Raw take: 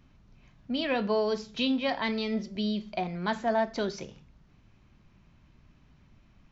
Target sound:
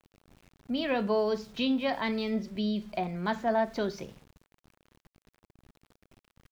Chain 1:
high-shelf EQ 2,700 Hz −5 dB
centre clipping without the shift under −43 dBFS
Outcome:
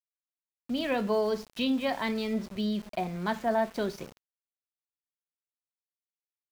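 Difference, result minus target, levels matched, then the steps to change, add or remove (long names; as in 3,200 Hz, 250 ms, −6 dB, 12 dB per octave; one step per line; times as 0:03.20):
centre clipping without the shift: distortion +7 dB
change: centre clipping without the shift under −52.5 dBFS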